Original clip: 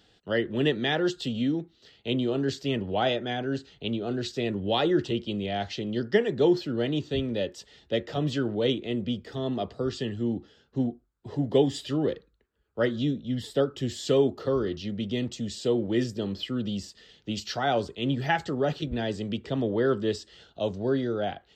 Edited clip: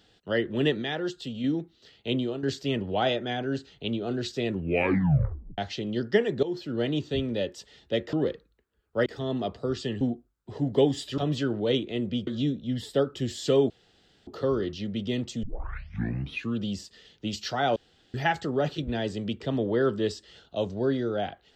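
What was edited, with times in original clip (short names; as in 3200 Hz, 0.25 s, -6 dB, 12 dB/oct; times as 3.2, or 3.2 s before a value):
0.82–1.44 gain -5 dB
2.16–2.43 fade out, to -10 dB
4.51 tape stop 1.07 s
6.43–6.8 fade in, from -17 dB
8.13–9.22 swap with 11.95–12.88
10.17–10.78 cut
14.31 insert room tone 0.57 s
15.47 tape start 1.16 s
17.8–18.18 room tone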